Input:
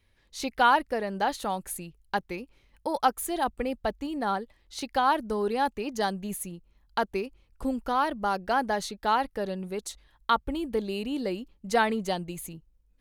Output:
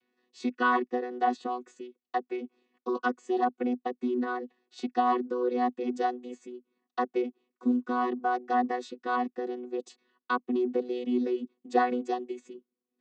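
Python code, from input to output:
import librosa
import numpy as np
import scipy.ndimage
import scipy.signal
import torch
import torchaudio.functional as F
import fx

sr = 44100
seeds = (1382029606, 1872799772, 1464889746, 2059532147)

y = fx.chord_vocoder(x, sr, chord='bare fifth', root=59)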